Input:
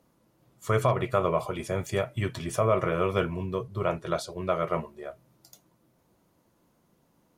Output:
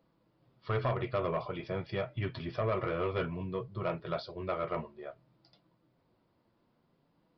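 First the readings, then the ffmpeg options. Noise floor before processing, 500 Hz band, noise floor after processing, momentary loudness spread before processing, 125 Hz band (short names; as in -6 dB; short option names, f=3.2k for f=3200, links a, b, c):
-68 dBFS, -7.0 dB, -73 dBFS, 8 LU, -6.0 dB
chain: -af "flanger=delay=6:depth=2.7:regen=-49:speed=0.54:shape=sinusoidal,aresample=11025,asoftclip=type=tanh:threshold=-22.5dB,aresample=44100,volume=-1dB"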